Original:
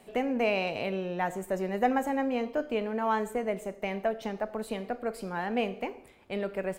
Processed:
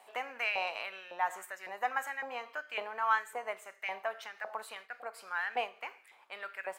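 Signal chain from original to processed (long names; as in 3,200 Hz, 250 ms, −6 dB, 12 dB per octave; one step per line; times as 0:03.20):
auto-filter high-pass saw up 1.8 Hz 830–1,800 Hz
0:04.75–0:05.94: downward expander −44 dBFS
amplitude modulation by smooth noise, depth 60%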